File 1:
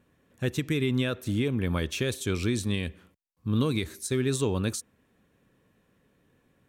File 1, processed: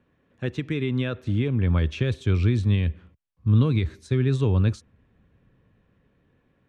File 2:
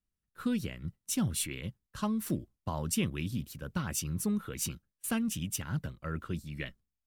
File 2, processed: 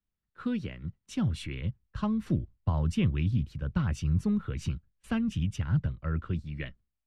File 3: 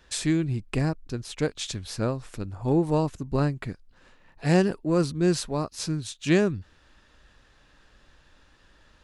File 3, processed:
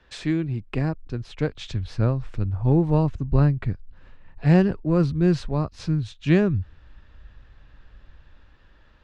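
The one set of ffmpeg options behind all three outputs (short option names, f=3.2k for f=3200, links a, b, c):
-filter_complex "[0:a]lowpass=3.3k,acrossover=split=130[a][b];[a]dynaudnorm=f=410:g=7:m=13.5dB[c];[c][b]amix=inputs=2:normalize=0"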